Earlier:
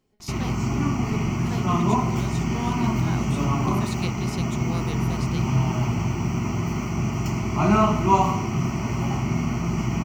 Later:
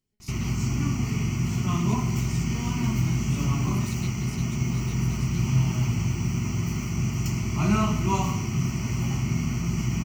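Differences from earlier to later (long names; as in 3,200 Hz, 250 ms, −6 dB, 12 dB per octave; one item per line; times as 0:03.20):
speech −9.0 dB
master: add drawn EQ curve 130 Hz 0 dB, 750 Hz −12 dB, 2,000 Hz −3 dB, 9,600 Hz +5 dB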